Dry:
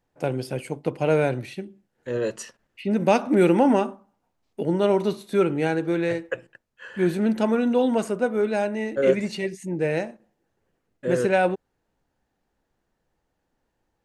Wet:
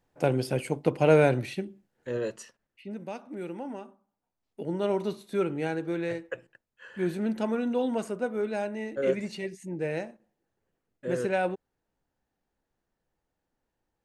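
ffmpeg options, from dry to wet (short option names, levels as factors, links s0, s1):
-af "volume=4.73,afade=t=out:st=1.56:d=0.85:silence=0.334965,afade=t=out:st=2.41:d=0.69:silence=0.281838,afade=t=in:st=3.84:d=1.08:silence=0.237137"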